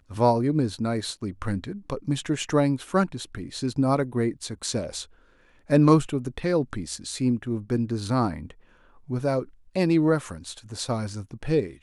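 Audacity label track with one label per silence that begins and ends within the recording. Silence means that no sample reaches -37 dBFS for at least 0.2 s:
5.040000	5.700000	silence
8.510000	9.090000	silence
9.430000	9.760000	silence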